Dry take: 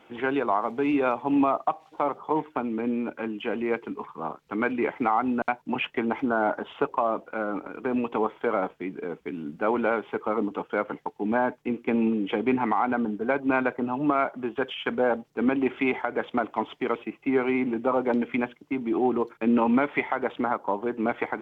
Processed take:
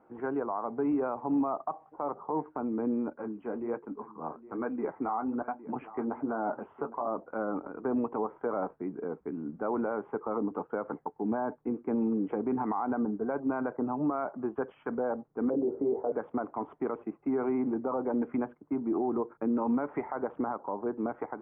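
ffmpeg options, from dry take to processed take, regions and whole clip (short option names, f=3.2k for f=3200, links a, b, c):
-filter_complex "[0:a]asettb=1/sr,asplit=3[a][b][c];[a]atrim=end=3.084[d];[b]atrim=start=3.08:end=7.08,asetpts=PTS-STARTPTS,afade=t=in:d=0.004:c=qsin,afade=t=out:st=3.996:d=0.004:c=qsin,aecho=1:1:810:0.141,atrim=end_sample=176400,flanger=delay=3.6:depth=9.6:regen=-38:speed=1.2:shape=sinusoidal[e];[c]atrim=start=7.076[f];[d][e]acrossfade=d=0.004:c1=hsin:c2=qsin[g];[g][f]acrossfade=d=0.004:c1=qsin:c2=hsin,asettb=1/sr,asplit=3[h][i][j];[h]atrim=end=15.504[k];[i]atrim=start=15.5:end=16.12,asetpts=PTS-STARTPTS,afade=t=in:d=0.004:c=qsin,afade=t=out:st=0.616:d=0.004:c=qsin,lowpass=f=490:t=q:w=4.7,asplit=2[l][m];[m]adelay=21,volume=-3.5dB[n];[l][n]amix=inputs=2:normalize=0,atrim=end_sample=27342[o];[j]atrim=start=16.116[p];[k][o]acrossfade=d=0.004:c1=hsin:c2=qsin[q];[q][p]acrossfade=d=0.004:c1=qsin:c2=hsin,lowpass=f=1.3k:w=0.5412,lowpass=f=1.3k:w=1.3066,dynaudnorm=f=180:g=7:m=3.5dB,alimiter=limit=-16dB:level=0:latency=1:release=60,volume=-6dB"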